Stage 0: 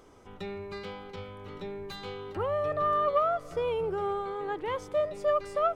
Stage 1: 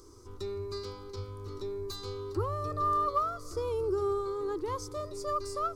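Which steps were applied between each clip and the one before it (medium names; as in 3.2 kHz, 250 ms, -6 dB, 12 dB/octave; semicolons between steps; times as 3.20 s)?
FFT filter 120 Hz 0 dB, 170 Hz -21 dB, 350 Hz +1 dB, 710 Hz -23 dB, 1.1 kHz -4 dB, 1.7 kHz -18 dB, 3.1 kHz -18 dB, 4.6 kHz +4 dB, 8.1 kHz +2 dB; trim +6 dB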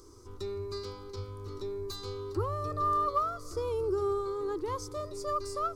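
no audible change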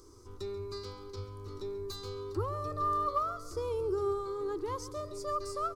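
delay 136 ms -15.5 dB; trim -2 dB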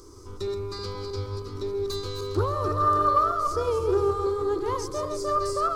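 backward echo that repeats 158 ms, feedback 55%, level -5.5 dB; loudspeaker Doppler distortion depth 0.15 ms; trim +8 dB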